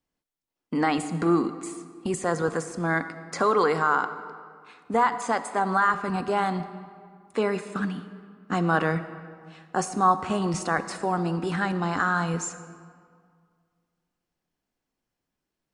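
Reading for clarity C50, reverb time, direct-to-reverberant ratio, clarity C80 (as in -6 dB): 12.0 dB, 2.0 s, 11.5 dB, 13.0 dB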